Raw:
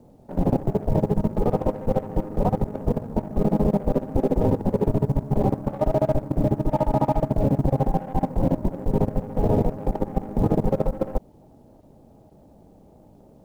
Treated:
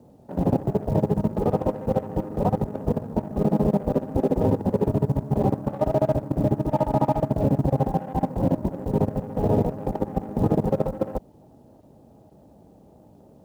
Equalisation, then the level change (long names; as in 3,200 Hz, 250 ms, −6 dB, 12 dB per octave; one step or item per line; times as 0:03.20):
high-pass filter 61 Hz
notch filter 2,200 Hz, Q 19
0.0 dB